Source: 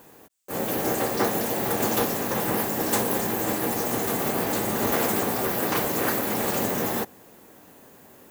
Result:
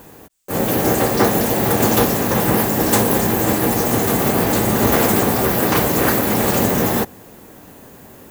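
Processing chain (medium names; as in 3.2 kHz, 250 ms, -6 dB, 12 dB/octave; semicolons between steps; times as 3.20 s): bass shelf 140 Hz +11 dB; trim +7.5 dB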